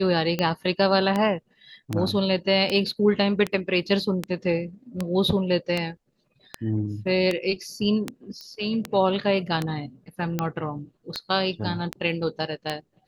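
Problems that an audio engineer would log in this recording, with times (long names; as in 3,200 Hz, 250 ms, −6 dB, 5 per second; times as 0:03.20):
scratch tick 78 rpm −11 dBFS
0:08.41: click −25 dBFS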